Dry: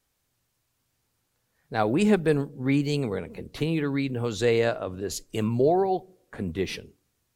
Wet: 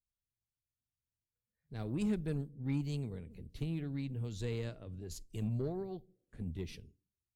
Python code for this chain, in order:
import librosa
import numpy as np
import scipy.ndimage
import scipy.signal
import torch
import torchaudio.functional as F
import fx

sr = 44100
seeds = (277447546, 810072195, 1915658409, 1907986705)

y = fx.noise_reduce_blind(x, sr, reduce_db=13)
y = fx.tone_stack(y, sr, knobs='10-0-1')
y = fx.cheby_harmonics(y, sr, harmonics=(8,), levels_db=(-29,), full_scale_db=-28.5)
y = y * 10.0 ** (5.5 / 20.0)